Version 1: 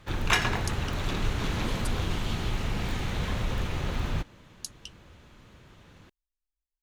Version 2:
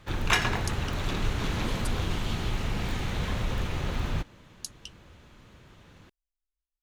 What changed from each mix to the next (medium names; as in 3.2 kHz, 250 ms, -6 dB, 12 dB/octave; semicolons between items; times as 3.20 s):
no change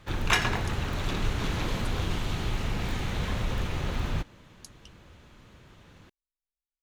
speech -10.0 dB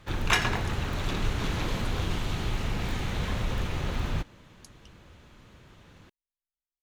speech -4.5 dB